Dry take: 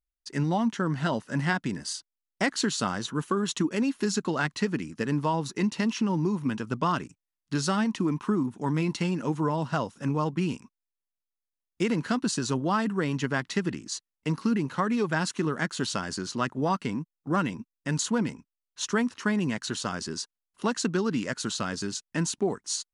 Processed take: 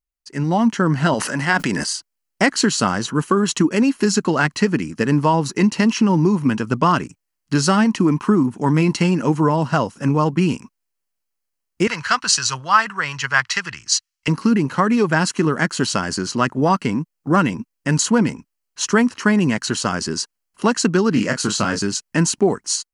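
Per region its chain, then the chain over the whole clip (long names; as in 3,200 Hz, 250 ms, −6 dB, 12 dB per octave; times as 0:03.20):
0:01.14–0:01.91: low-shelf EQ 260 Hz −11.5 dB + level that may fall only so fast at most 26 dB per second
0:11.87–0:14.28: drawn EQ curve 110 Hz 0 dB, 270 Hz −19 dB, 1,200 Hz +9 dB, 5,800 Hz +10 dB, 11,000 Hz 0 dB + multiband upward and downward expander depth 40%
0:21.13–0:21.79: double-tracking delay 29 ms −6.5 dB + highs frequency-modulated by the lows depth 0.1 ms
whole clip: notch filter 3,600 Hz, Q 6.2; automatic gain control gain up to 11 dB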